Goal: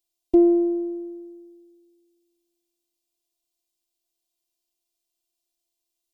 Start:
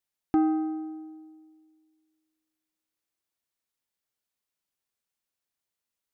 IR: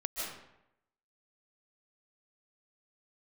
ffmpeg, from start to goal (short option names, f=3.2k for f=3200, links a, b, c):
-af "asuperstop=centerf=1500:order=4:qfactor=0.73,afftfilt=real='hypot(re,im)*cos(PI*b)':imag='0':win_size=512:overlap=0.75,volume=9dB"